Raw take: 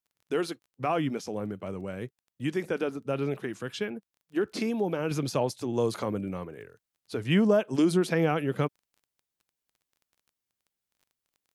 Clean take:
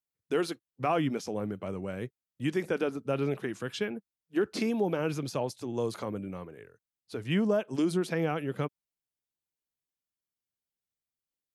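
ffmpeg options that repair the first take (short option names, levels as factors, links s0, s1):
-af "adeclick=t=4,asetnsamples=n=441:p=0,asendcmd='5.11 volume volume -4.5dB',volume=1"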